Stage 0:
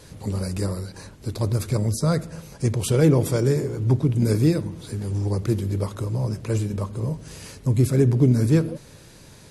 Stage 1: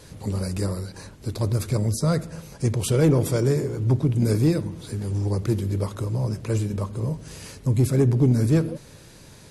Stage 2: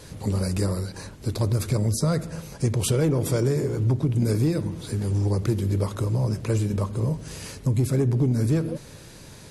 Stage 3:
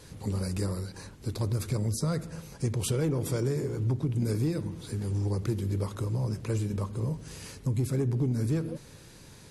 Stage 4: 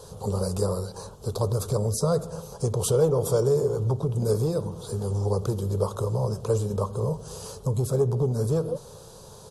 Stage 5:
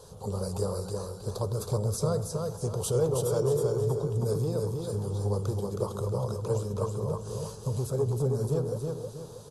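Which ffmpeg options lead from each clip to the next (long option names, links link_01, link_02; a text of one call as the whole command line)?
ffmpeg -i in.wav -af "asoftclip=type=tanh:threshold=-9dB" out.wav
ffmpeg -i in.wav -af "acompressor=threshold=-21dB:ratio=6,volume=2.5dB" out.wav
ffmpeg -i in.wav -af "equalizer=frequency=620:width=5.2:gain=-4.5,volume=-6dB" out.wav
ffmpeg -i in.wav -af "firequalizer=gain_entry='entry(200,0);entry(290,-11);entry(430,10);entry(1200,6);entry(2000,-19);entry(3200,-1);entry(6500,3)':delay=0.05:min_phase=1,volume=2.5dB" out.wav
ffmpeg -i in.wav -af "aecho=1:1:319|638|957|1276|1595:0.631|0.233|0.0864|0.032|0.0118,volume=-5.5dB" out.wav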